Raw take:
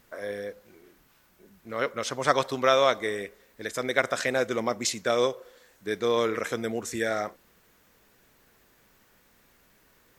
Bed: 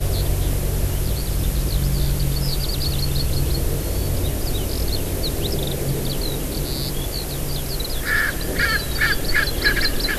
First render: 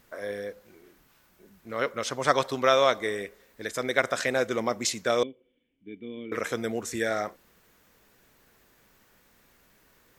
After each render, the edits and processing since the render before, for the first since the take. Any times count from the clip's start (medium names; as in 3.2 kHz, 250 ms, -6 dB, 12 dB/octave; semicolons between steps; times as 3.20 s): 5.23–6.32 s: cascade formant filter i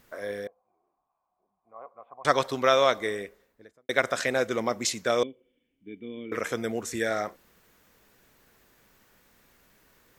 0.47–2.25 s: cascade formant filter a; 3.03–3.89 s: studio fade out; 5.10–6.78 s: band-stop 3.9 kHz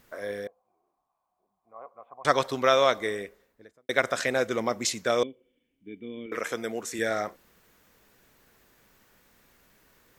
6.26–6.99 s: high-pass 300 Hz 6 dB/octave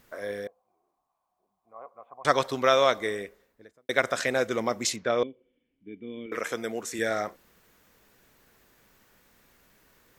4.96–6.08 s: distance through air 210 m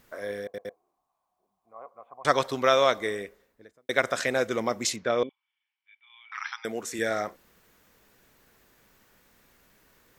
0.43 s: stutter in place 0.11 s, 3 plays; 5.29–6.65 s: brick-wall FIR band-pass 770–5900 Hz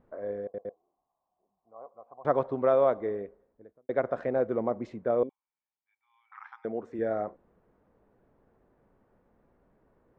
Chebyshev low-pass 700 Hz, order 2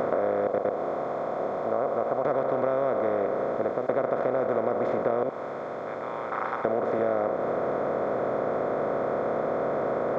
spectral levelling over time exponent 0.2; compression 5:1, threshold -22 dBFS, peak gain reduction 8 dB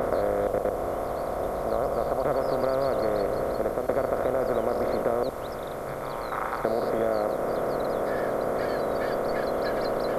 add bed -21 dB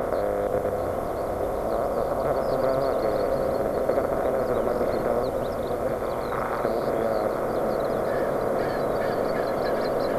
chunks repeated in reverse 497 ms, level -6.5 dB; delay with an opening low-pass 483 ms, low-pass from 200 Hz, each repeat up 1 oct, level -3 dB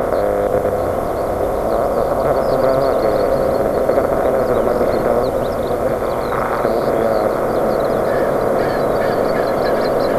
trim +9 dB; peak limiter -2 dBFS, peak gain reduction 1 dB